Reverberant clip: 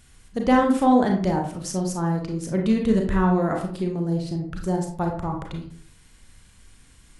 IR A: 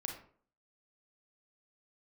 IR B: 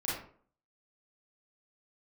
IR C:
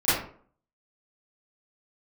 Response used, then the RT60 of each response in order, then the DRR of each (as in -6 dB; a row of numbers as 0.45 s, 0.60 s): A; 0.50 s, 0.50 s, 0.50 s; 1.5 dB, -8.5 dB, -17.0 dB